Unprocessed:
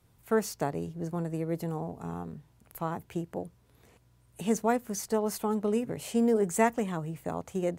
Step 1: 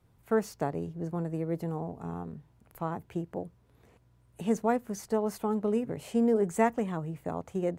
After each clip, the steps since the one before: treble shelf 2.8 kHz -9 dB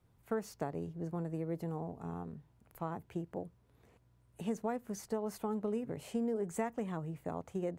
compression 5:1, threshold -27 dBFS, peak gain reduction 8 dB; trim -4.5 dB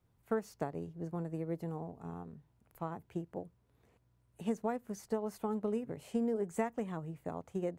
upward expansion 1.5:1, over -44 dBFS; trim +2.5 dB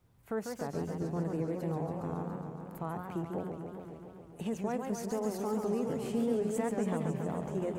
peak limiter -31.5 dBFS, peak gain reduction 10.5 dB; modulated delay 139 ms, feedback 77%, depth 214 cents, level -5.5 dB; trim +6 dB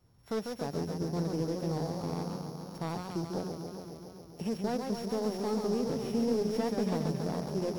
sorted samples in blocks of 8 samples; slew-rate limiter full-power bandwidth 35 Hz; trim +1.5 dB

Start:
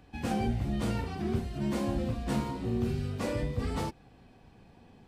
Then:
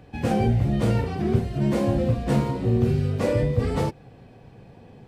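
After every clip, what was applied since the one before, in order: graphic EQ 125/500/2000 Hz +10/+9/+3 dB; trim +3 dB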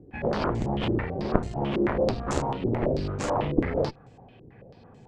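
Chebyshev shaper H 3 -6 dB, 6 -22 dB, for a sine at -8 dBFS; step-sequenced low-pass 9.1 Hz 360–7200 Hz; trim +1.5 dB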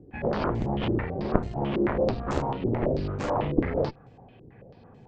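distance through air 130 m

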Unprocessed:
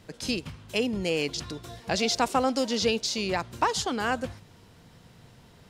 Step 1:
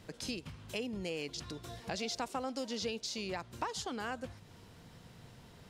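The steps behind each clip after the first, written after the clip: compression 2:1, threshold -41 dBFS, peak gain reduction 12.5 dB; trim -2 dB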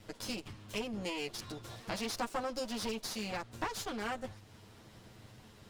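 comb filter that takes the minimum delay 9.3 ms; trim +1 dB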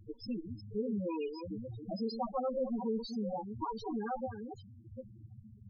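chunks repeated in reverse 420 ms, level -7 dB; loudest bins only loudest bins 4; trim +5.5 dB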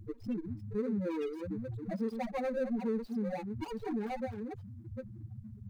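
median filter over 41 samples; in parallel at +2 dB: compression, threshold -47 dBFS, peak gain reduction 15 dB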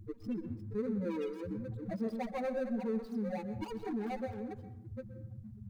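reverberation RT60 0.70 s, pre-delay 113 ms, DRR 11.5 dB; trim -1.5 dB

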